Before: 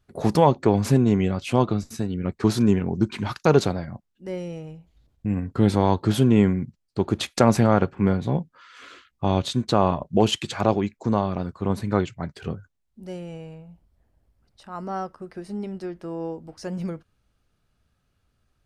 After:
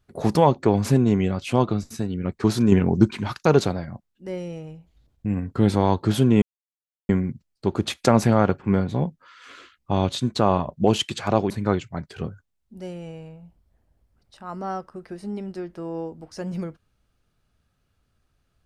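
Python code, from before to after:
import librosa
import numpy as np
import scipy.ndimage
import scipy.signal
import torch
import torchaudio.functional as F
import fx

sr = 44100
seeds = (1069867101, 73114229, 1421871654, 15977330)

y = fx.edit(x, sr, fx.clip_gain(start_s=2.72, length_s=0.39, db=5.5),
    fx.insert_silence(at_s=6.42, length_s=0.67),
    fx.cut(start_s=10.83, length_s=0.93), tone=tone)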